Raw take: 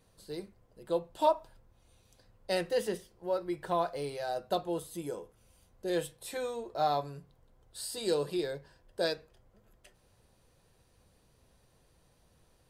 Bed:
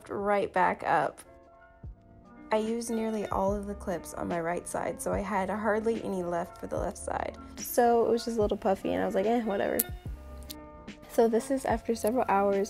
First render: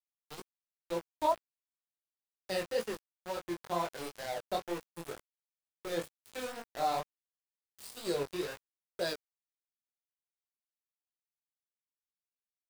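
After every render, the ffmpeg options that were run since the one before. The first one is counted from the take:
-af "aeval=exprs='val(0)*gte(abs(val(0)),0.02)':c=same,flanger=delay=17:depth=7.1:speed=2.1"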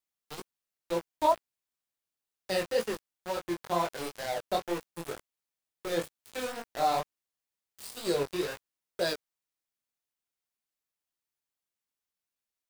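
-af "volume=1.68"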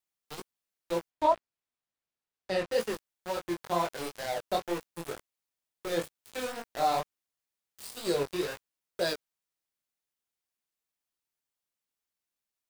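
-filter_complex "[0:a]asettb=1/sr,asplit=3[s0][s1][s2];[s0]atrim=end=1.104[s3];[s1]atrim=start=1.1:end=2.72,asetpts=PTS-STARTPTS,afade=t=in:d=0.004:c=qsin,afade=t=out:st=1.616:d=0.004:c=qsin,aemphasis=mode=reproduction:type=50fm[s4];[s2]atrim=start=2.716[s5];[s3][s4]acrossfade=d=0.004:c1=hsin:c2=qsin[s6];[s6][s5]acrossfade=d=0.004:c1=qsin:c2=hsin"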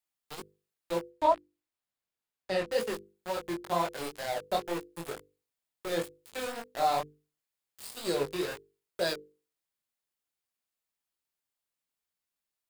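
-af "equalizer=f=5900:w=7.4:g=-4,bandreject=f=50:t=h:w=6,bandreject=f=100:t=h:w=6,bandreject=f=150:t=h:w=6,bandreject=f=200:t=h:w=6,bandreject=f=250:t=h:w=6,bandreject=f=300:t=h:w=6,bandreject=f=350:t=h:w=6,bandreject=f=400:t=h:w=6,bandreject=f=450:t=h:w=6,bandreject=f=500:t=h:w=6"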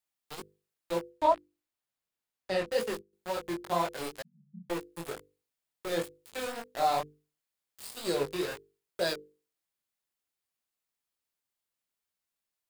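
-filter_complex "[0:a]asettb=1/sr,asplit=3[s0][s1][s2];[s0]atrim=end=2.544[s3];[s1]atrim=start=2.54:end=3.13,asetpts=PTS-STARTPTS,afade=t=in:d=0.004:c=qsin,afade=t=out:st=0.586:d=0.004:c=qsin,agate=range=0.316:threshold=0.00398:ratio=16:release=100:detection=peak[s4];[s2]atrim=start=3.126[s5];[s3][s4]acrossfade=d=0.004:c1=hsin:c2=qsin[s6];[s6][s5]acrossfade=d=0.004:c1=qsin:c2=hsin,asettb=1/sr,asplit=3[s7][s8][s9];[s7]atrim=end=4.224[s10];[s8]atrim=start=4.22:end=4.7,asetpts=PTS-STARTPTS,afade=t=in:d=0.004:c=qsin,afade=t=out:st=0.476:d=0.004:c=qsin,asuperpass=centerf=180:order=20:qfactor=2.2[s11];[s9]atrim=start=4.696[s12];[s10][s11]acrossfade=d=0.004:c1=hsin:c2=qsin[s13];[s13][s12]acrossfade=d=0.004:c1=qsin:c2=hsin"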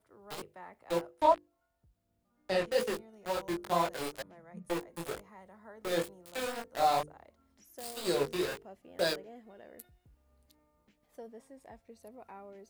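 -filter_complex "[1:a]volume=0.0631[s0];[0:a][s0]amix=inputs=2:normalize=0"

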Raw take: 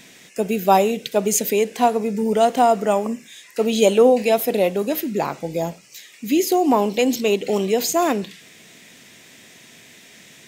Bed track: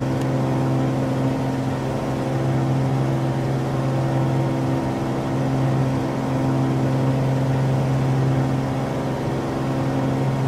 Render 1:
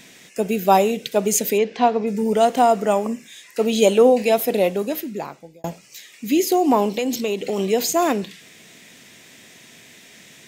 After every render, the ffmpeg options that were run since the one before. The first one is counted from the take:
-filter_complex "[0:a]asplit=3[s0][s1][s2];[s0]afade=t=out:st=1.57:d=0.02[s3];[s1]lowpass=f=5000:w=0.5412,lowpass=f=5000:w=1.3066,afade=t=in:st=1.57:d=0.02,afade=t=out:st=2.06:d=0.02[s4];[s2]afade=t=in:st=2.06:d=0.02[s5];[s3][s4][s5]amix=inputs=3:normalize=0,asplit=3[s6][s7][s8];[s6]afade=t=out:st=6.89:d=0.02[s9];[s7]acompressor=threshold=0.126:ratio=6:attack=3.2:release=140:knee=1:detection=peak,afade=t=in:st=6.89:d=0.02,afade=t=out:st=7.57:d=0.02[s10];[s8]afade=t=in:st=7.57:d=0.02[s11];[s9][s10][s11]amix=inputs=3:normalize=0,asplit=2[s12][s13];[s12]atrim=end=5.64,asetpts=PTS-STARTPTS,afade=t=out:st=4.68:d=0.96[s14];[s13]atrim=start=5.64,asetpts=PTS-STARTPTS,afade=t=in:d=0.004:c=hsin[s15];[s14][s15]concat=n=2:v=0:a=1"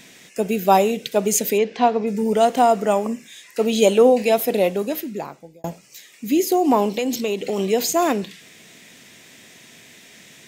-filter_complex "[0:a]asettb=1/sr,asplit=3[s0][s1][s2];[s0]atrim=end=5.214[s3];[s1]atrim=start=5.21:end=6.65,asetpts=PTS-STARTPTS,afade=t=in:d=0.004:c=qsin,afade=t=out:st=1.436:d=0.004:c=qsin,equalizer=f=3000:t=o:w=2.3:g=-3.5[s4];[s2]atrim=start=6.646[s5];[s3][s4]acrossfade=d=0.004:c1=hsin:c2=qsin[s6];[s6][s5]acrossfade=d=0.004:c1=qsin:c2=hsin"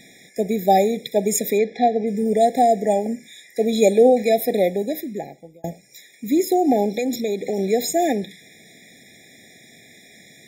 -af "afftfilt=real='re*eq(mod(floor(b*sr/1024/830),2),0)':imag='im*eq(mod(floor(b*sr/1024/830),2),0)':win_size=1024:overlap=0.75"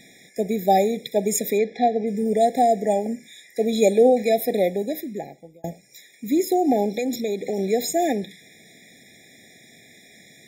-af "volume=0.794"

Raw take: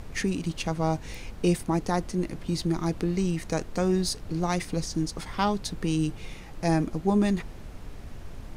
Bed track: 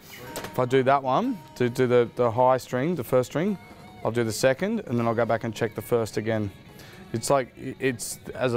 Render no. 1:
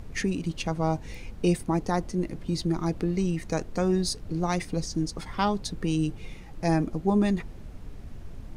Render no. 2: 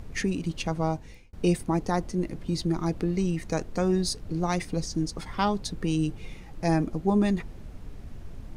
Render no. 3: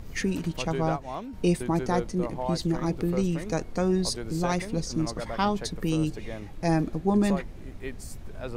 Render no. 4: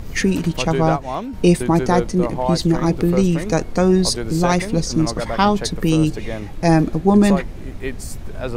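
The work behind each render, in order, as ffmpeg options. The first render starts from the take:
-af "afftdn=nr=6:nf=-43"
-filter_complex "[0:a]asplit=2[s0][s1];[s0]atrim=end=1.33,asetpts=PTS-STARTPTS,afade=t=out:st=0.81:d=0.52[s2];[s1]atrim=start=1.33,asetpts=PTS-STARTPTS,afade=t=in:d=0.004:c=hsin[s3];[s2][s3]concat=n=2:v=0:a=1"
-filter_complex "[1:a]volume=0.237[s0];[0:a][s0]amix=inputs=2:normalize=0"
-af "volume=3.16,alimiter=limit=0.794:level=0:latency=1"

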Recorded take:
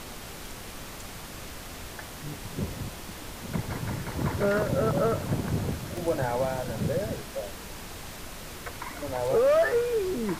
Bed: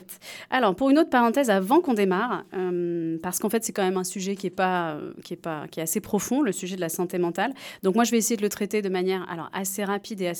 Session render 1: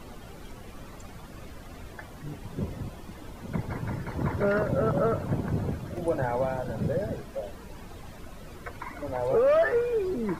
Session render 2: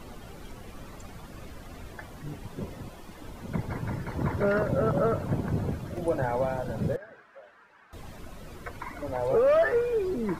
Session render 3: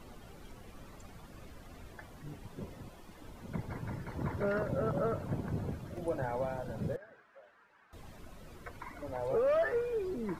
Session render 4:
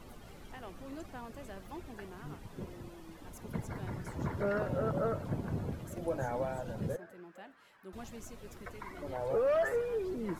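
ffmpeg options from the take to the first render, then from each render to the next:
-af "afftdn=nr=13:nf=-41"
-filter_complex "[0:a]asettb=1/sr,asplit=3[s0][s1][s2];[s0]atrim=end=2.474[s3];[s1]atrim=start=2.47:end=3.21,asetpts=PTS-STARTPTS,afade=t=in:d=0.004:c=qsin,afade=t=out:st=0.736:d=0.004:c=qsin,equalizer=f=85:w=0.39:g=-6.5[s4];[s2]atrim=start=3.206[s5];[s3][s4]acrossfade=d=0.004:c1=hsin:c2=qsin[s6];[s6][s5]acrossfade=d=0.004:c1=qsin:c2=hsin,asettb=1/sr,asplit=3[s7][s8][s9];[s7]atrim=end=6.964[s10];[s8]atrim=start=6.96:end=7.93,asetpts=PTS-STARTPTS,afade=t=in:d=0.004:c=qsin,afade=t=out:st=0.966:d=0.004:c=qsin,bandpass=f=1500:t=q:w=2.5[s11];[s9]atrim=start=7.926[s12];[s10][s11]acrossfade=d=0.004:c1=hsin:c2=qsin[s13];[s13][s12]acrossfade=d=0.004:c1=qsin:c2=hsin"
-af "volume=0.422"
-filter_complex "[1:a]volume=0.0447[s0];[0:a][s0]amix=inputs=2:normalize=0"

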